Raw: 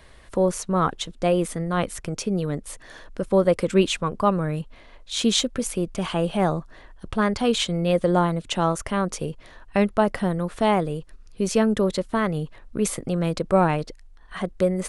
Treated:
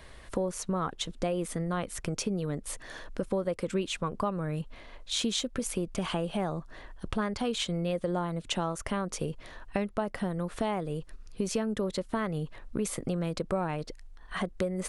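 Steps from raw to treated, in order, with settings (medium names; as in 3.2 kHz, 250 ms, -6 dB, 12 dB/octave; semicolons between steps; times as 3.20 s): compression 5:1, threshold -28 dBFS, peak gain reduction 14 dB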